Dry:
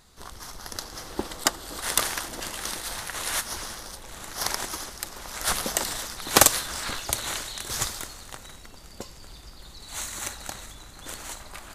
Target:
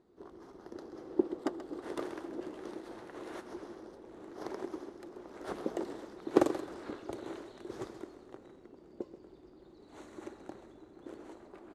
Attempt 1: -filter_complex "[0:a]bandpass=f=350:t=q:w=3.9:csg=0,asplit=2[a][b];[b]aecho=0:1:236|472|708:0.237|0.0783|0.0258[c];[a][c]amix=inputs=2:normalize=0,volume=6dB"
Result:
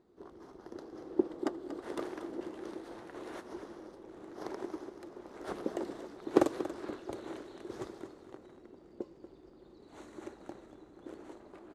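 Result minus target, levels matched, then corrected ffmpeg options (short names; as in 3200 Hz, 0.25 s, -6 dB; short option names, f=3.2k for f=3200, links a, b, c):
echo 0.104 s late
-filter_complex "[0:a]bandpass=f=350:t=q:w=3.9:csg=0,asplit=2[a][b];[b]aecho=0:1:132|264|396:0.237|0.0783|0.0258[c];[a][c]amix=inputs=2:normalize=0,volume=6dB"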